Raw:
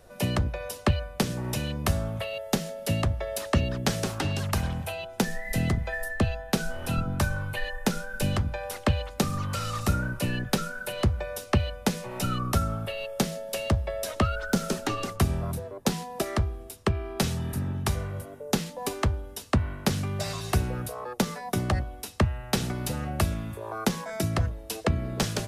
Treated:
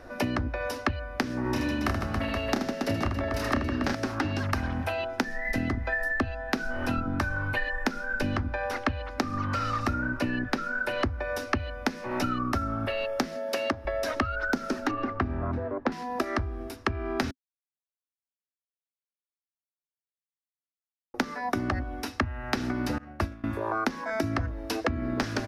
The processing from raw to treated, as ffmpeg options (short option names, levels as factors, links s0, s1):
-filter_complex "[0:a]asettb=1/sr,asplit=3[s0][s1][s2];[s0]atrim=end=1.424[s3];[s1]atrim=start=1.42:end=3.95,asetpts=PTS-STARTPTS,afade=t=in:d=0.004:c=qsin,afade=t=out:st=2.526:d=0.004:c=qsin,aecho=1:1:30|78|154.8|277.7|474.3:0.794|0.631|0.501|0.398|0.316,atrim=end_sample=111573[s4];[s2]atrim=start=3.946[s5];[s3][s4]acrossfade=d=0.004:c1=hsin:c2=qsin[s6];[s6][s5]acrossfade=d=0.004:c1=qsin:c2=hsin,asettb=1/sr,asplit=3[s7][s8][s9];[s7]atrim=end=8.134[s10];[s8]atrim=start=8.13:end=11.05,asetpts=PTS-STARTPTS,afade=t=in:d=0.004:c=qsin,afade=t=out:st=2.916:d=0.004:c=qsin,highshelf=f=8500:g=-6.5[s11];[s9]atrim=start=11.046[s12];[s10][s11]acrossfade=d=0.004:c1=hsin:c2=qsin[s13];[s13][s12]acrossfade=d=0.004:c1=qsin:c2=hsin,asettb=1/sr,asplit=3[s14][s15][s16];[s14]atrim=end=13.364[s17];[s15]atrim=start=13.36:end=13.85,asetpts=PTS-STARTPTS,afade=t=in:d=0.004:c=qsin,afade=t=out:st=0.486:d=0.004:c=qsin,highpass=180[s18];[s16]atrim=start=13.846[s19];[s17][s18]acrossfade=d=0.004:c1=hsin:c2=qsin[s20];[s20][s19]acrossfade=d=0.004:c1=qsin:c2=hsin,asettb=1/sr,asplit=3[s21][s22][s23];[s21]atrim=end=14.914[s24];[s22]atrim=start=14.91:end=15.92,asetpts=PTS-STARTPTS,afade=t=in:d=0.004:c=qsin,afade=t=out:st=1.006:d=0.004:c=qsin,lowpass=2100[s25];[s23]atrim=start=15.916[s26];[s24][s25]acrossfade=d=0.004:c1=hsin:c2=qsin[s27];[s27][s26]acrossfade=d=0.004:c1=qsin:c2=hsin,asettb=1/sr,asplit=3[s28][s29][s30];[s28]atrim=end=22.984[s31];[s29]atrim=start=22.98:end=23.44,asetpts=PTS-STARTPTS,afade=t=in:d=0.004:c=qsin,afade=t=out:st=0.456:d=0.004:c=qsin,agate=range=0.0224:threshold=0.1:ratio=3:release=100:detection=peak[s32];[s30]atrim=start=23.436[s33];[s31][s32]acrossfade=d=0.004:c1=hsin:c2=qsin[s34];[s34][s33]acrossfade=d=0.004:c1=qsin:c2=hsin,asplit=3[s35][s36][s37];[s35]atrim=end=17.31,asetpts=PTS-STARTPTS,afade=t=out:st=17.306:d=0.004:c=hsin[s38];[s36]atrim=start=17.31:end=21.14,asetpts=PTS-STARTPTS,volume=0[s39];[s37]atrim=start=21.14,asetpts=PTS-STARTPTS,afade=t=in:d=0.004:c=hsin[s40];[s38][s39][s40]concat=n=3:v=0:a=1,firequalizer=gain_entry='entry(100,0);entry(170,-10);entry(260,12);entry(430,-1);entry(650,2);entry(1600,7);entry(3200,-5);entry(5300,-1);entry(7600,-14);entry(15000,-12)':delay=0.05:min_phase=1,acompressor=threshold=0.0282:ratio=6,volume=1.88"